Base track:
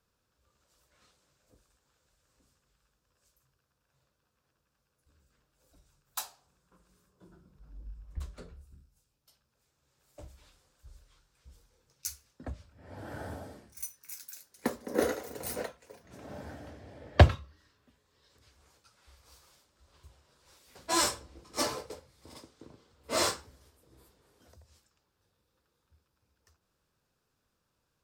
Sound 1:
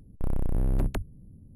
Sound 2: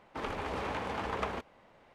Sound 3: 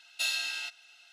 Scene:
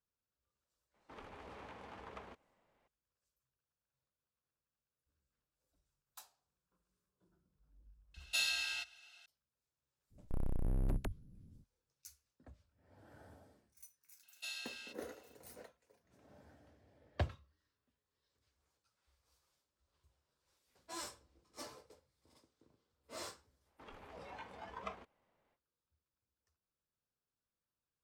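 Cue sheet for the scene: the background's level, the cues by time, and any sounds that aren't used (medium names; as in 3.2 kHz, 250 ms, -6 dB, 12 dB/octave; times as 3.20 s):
base track -18.5 dB
0.94 s: add 2 -16.5 dB
8.14 s: add 3 -4 dB
10.10 s: add 1 -9.5 dB, fades 0.05 s
14.23 s: add 3 -14.5 dB
23.64 s: add 2 -8 dB, fades 0.05 s + spectral noise reduction 11 dB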